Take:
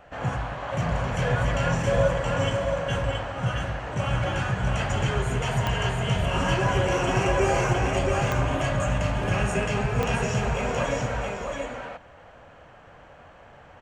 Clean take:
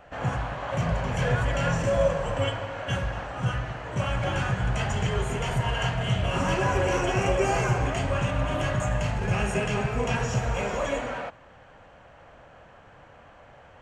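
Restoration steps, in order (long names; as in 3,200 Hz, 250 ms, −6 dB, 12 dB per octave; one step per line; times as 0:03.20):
click removal
echo removal 673 ms −3.5 dB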